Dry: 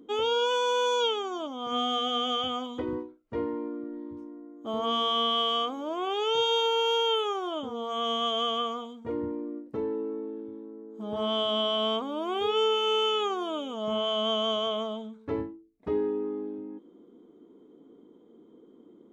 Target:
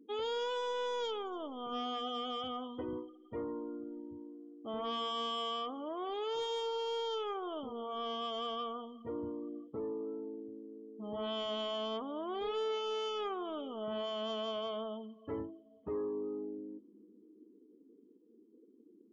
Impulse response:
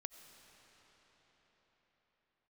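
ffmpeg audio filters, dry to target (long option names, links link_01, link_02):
-filter_complex "[0:a]asoftclip=type=tanh:threshold=-24.5dB,asplit=2[link_01][link_02];[1:a]atrim=start_sample=2205[link_03];[link_02][link_03]afir=irnorm=-1:irlink=0,volume=-4.5dB[link_04];[link_01][link_04]amix=inputs=2:normalize=0,afftdn=noise_reduction=21:noise_floor=-43,adynamicequalizer=threshold=0.00562:dfrequency=2400:dqfactor=0.7:tfrequency=2400:tqfactor=0.7:attack=5:release=100:ratio=0.375:range=3:mode=cutabove:tftype=highshelf,volume=-9dB"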